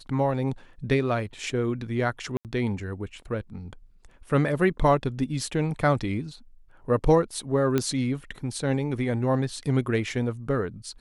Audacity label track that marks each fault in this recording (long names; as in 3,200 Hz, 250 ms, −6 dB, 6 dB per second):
2.370000	2.450000	drop-out 78 ms
7.780000	7.780000	click −11 dBFS